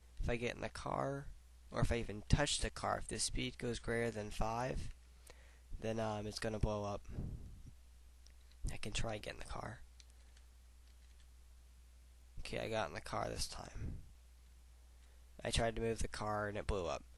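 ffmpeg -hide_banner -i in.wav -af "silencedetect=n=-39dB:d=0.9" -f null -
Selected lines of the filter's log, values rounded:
silence_start: 7.35
silence_end: 8.64 | silence_duration: 1.29
silence_start: 9.72
silence_end: 12.38 | silence_duration: 2.66
silence_start: 13.95
silence_end: 15.40 | silence_duration: 1.44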